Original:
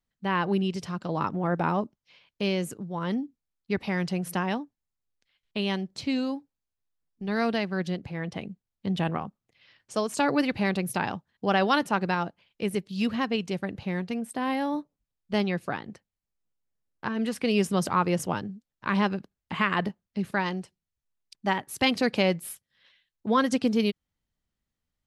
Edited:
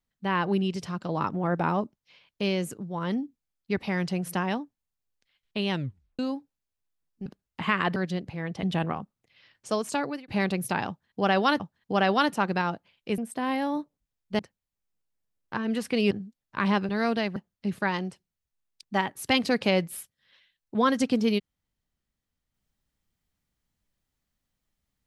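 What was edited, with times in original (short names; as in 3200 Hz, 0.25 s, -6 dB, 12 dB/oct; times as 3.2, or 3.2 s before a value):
5.71 tape stop 0.48 s
7.26–7.73 swap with 19.18–19.88
8.4–8.88 cut
10.07–10.53 fade out
11.13–11.85 loop, 2 plays
12.71–14.17 cut
15.38–15.9 cut
17.62–18.4 cut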